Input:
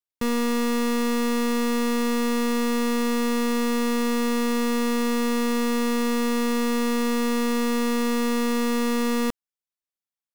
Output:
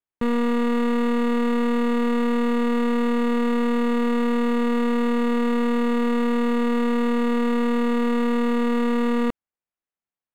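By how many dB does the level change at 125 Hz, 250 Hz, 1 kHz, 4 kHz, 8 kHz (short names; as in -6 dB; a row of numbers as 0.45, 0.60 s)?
n/a, +2.5 dB, +1.5 dB, -5.5 dB, under -10 dB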